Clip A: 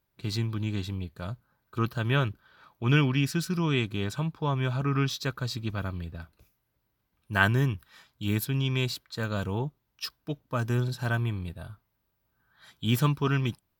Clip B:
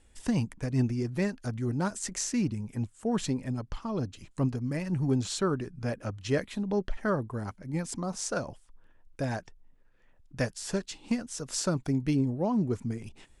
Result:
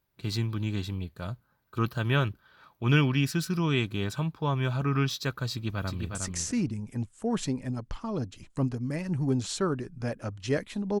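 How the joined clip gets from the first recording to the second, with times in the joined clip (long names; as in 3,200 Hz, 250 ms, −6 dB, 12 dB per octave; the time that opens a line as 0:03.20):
clip A
0:05.51–0:06.15: delay throw 360 ms, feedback 10%, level −4.5 dB
0:06.15: continue with clip B from 0:01.96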